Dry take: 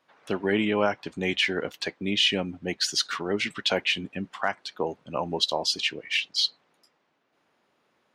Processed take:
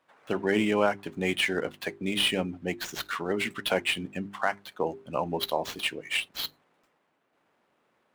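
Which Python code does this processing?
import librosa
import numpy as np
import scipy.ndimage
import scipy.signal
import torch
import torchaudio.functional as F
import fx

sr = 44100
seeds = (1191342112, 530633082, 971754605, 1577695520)

y = scipy.ndimage.median_filter(x, 9, mode='constant')
y = fx.hum_notches(y, sr, base_hz=50, count=8)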